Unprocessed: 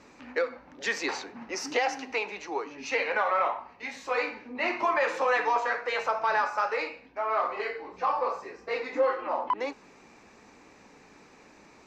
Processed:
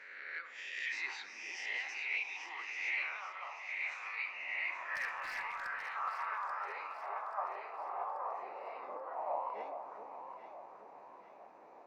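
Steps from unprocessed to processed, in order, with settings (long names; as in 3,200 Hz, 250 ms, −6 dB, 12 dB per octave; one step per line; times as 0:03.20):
peak hold with a rise ahead of every peak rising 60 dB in 1.00 s
noise reduction from a noise print of the clip's start 7 dB
transient designer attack −7 dB, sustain +4 dB
downward compressor 2.5 to 1, threshold −45 dBFS, peak gain reduction 16 dB
band-pass filter sweep 2,200 Hz → 720 Hz, 0:04.23–0:08.00
0:04.95–0:05.67: hard clipping −39 dBFS, distortion −28 dB
harmonic and percussive parts rebalanced harmonic −16 dB
delay that swaps between a low-pass and a high-pass 417 ms, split 810 Hz, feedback 67%, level −5 dB
on a send at −10 dB: convolution reverb RT60 1.1 s, pre-delay 5 ms
on the sum: level +11.5 dB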